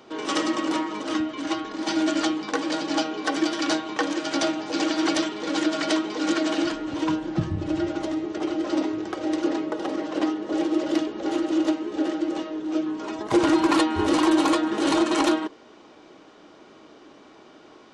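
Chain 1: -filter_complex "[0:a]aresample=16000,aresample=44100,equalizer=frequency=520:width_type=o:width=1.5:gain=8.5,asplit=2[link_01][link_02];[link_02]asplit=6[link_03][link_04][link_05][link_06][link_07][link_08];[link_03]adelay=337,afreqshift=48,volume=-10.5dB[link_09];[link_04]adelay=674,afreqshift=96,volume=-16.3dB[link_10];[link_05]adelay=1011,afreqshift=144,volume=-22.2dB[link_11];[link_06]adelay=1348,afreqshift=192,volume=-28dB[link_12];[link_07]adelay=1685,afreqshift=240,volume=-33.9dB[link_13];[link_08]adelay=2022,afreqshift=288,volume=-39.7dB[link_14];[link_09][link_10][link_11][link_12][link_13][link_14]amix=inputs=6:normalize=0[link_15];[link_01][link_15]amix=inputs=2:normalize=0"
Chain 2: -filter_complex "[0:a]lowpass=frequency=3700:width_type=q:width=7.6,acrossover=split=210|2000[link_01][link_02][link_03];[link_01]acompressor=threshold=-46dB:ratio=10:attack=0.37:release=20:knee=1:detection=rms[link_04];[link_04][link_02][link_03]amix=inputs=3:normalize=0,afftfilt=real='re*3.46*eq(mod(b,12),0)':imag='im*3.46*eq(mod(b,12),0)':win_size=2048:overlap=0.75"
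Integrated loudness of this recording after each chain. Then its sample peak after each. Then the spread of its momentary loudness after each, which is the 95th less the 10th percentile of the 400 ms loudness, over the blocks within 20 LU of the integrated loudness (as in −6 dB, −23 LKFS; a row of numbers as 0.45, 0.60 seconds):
−20.0, −26.5 LKFS; −4.5, −9.5 dBFS; 8, 12 LU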